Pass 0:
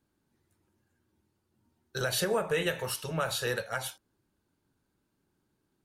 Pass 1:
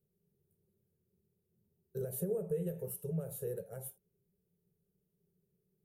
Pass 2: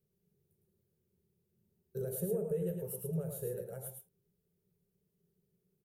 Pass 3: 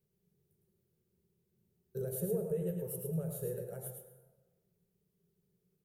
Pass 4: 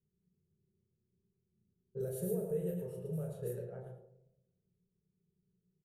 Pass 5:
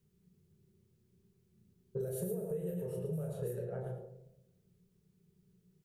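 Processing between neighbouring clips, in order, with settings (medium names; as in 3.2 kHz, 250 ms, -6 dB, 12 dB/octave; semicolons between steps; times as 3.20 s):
FFT filter 110 Hz 0 dB, 180 Hz +12 dB, 290 Hz -20 dB, 400 Hz +10 dB, 1 kHz -21 dB, 2.9 kHz -24 dB, 4.7 kHz -28 dB, 9.3 kHz -2 dB, 14 kHz +8 dB; compression 1.5:1, threshold -34 dBFS, peak gain reduction 5.5 dB; trim -6 dB
delay 108 ms -5.5 dB
plate-style reverb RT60 1.3 s, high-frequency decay 0.5×, pre-delay 85 ms, DRR 10.5 dB
doubling 33 ms -4.5 dB; level-controlled noise filter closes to 310 Hz, open at -31.5 dBFS; trim -2.5 dB
compression, threshold -46 dBFS, peak gain reduction 14.5 dB; trim +10.5 dB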